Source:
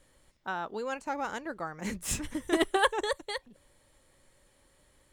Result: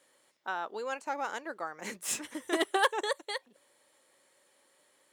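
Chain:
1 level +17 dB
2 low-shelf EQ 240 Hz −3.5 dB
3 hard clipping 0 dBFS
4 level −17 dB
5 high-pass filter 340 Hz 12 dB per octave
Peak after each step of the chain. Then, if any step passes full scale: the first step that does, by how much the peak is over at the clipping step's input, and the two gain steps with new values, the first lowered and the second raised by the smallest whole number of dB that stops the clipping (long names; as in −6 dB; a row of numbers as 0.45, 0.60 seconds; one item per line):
+4.5, +4.0, 0.0, −17.0, −13.0 dBFS
step 1, 4.0 dB
step 1 +13 dB, step 4 −13 dB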